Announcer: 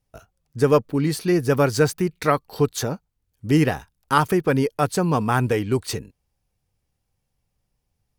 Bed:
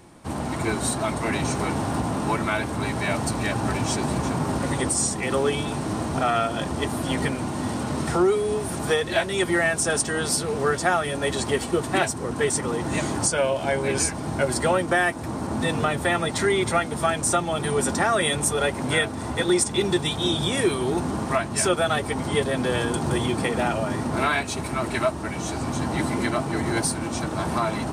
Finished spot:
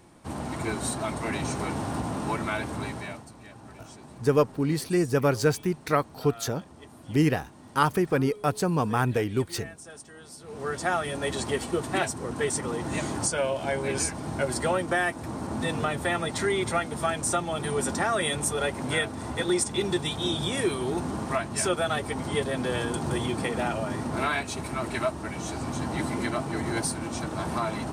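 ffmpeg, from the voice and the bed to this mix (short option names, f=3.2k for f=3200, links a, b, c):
-filter_complex "[0:a]adelay=3650,volume=-4.5dB[a];[1:a]volume=12.5dB,afade=t=out:st=2.75:d=0.5:silence=0.141254,afade=t=in:st=10.39:d=0.55:silence=0.133352[b];[a][b]amix=inputs=2:normalize=0"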